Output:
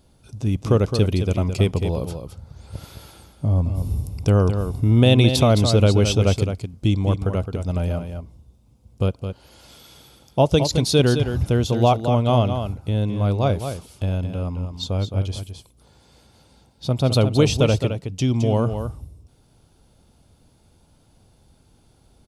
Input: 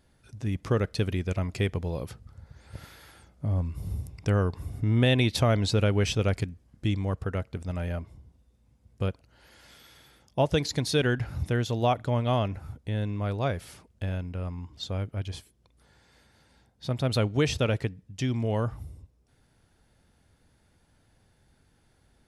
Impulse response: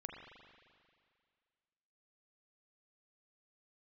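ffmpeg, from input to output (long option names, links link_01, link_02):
-af "equalizer=frequency=1800:width_type=o:width=0.59:gain=-14,aecho=1:1:215:0.398,volume=8dB"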